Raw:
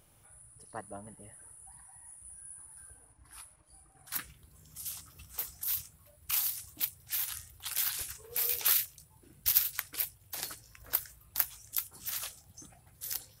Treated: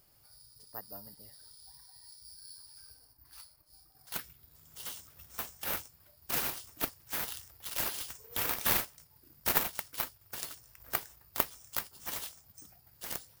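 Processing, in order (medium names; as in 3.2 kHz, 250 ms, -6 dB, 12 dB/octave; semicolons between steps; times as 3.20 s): careless resampling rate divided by 3×, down none, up zero stuff; trim -6.5 dB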